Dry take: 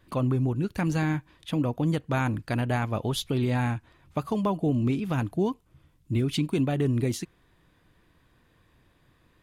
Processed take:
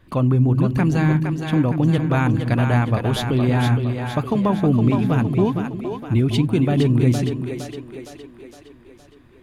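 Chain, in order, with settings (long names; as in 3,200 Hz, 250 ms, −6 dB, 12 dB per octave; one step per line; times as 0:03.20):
bass and treble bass +3 dB, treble −5 dB
on a send: echo with a time of its own for lows and highs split 310 Hz, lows 179 ms, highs 463 ms, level −5.5 dB
on the sum: level +5.5 dB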